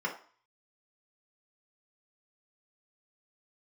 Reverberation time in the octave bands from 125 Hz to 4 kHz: 0.25, 0.40, 0.40, 0.50, 0.45, 0.45 seconds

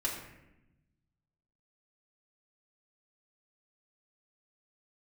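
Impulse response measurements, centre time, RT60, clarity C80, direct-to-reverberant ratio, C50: 42 ms, 0.90 s, 6.5 dB, −4.5 dB, 4.5 dB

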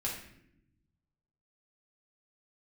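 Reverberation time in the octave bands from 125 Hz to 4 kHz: 1.8, 1.4, 0.95, 0.60, 0.75, 0.55 seconds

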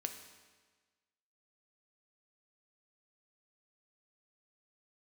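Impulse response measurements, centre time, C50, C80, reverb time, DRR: 23 ms, 8.0 dB, 9.5 dB, 1.4 s, 5.5 dB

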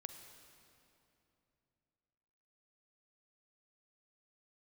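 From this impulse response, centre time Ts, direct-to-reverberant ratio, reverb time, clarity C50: 40 ms, 7.0 dB, 2.9 s, 7.0 dB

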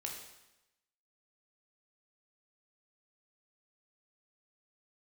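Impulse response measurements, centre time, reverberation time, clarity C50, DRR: 40 ms, 0.95 s, 4.0 dB, 0.0 dB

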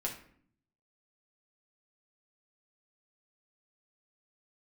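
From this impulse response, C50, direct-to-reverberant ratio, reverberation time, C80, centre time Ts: 8.0 dB, −2.5 dB, 0.60 s, 12.5 dB, 20 ms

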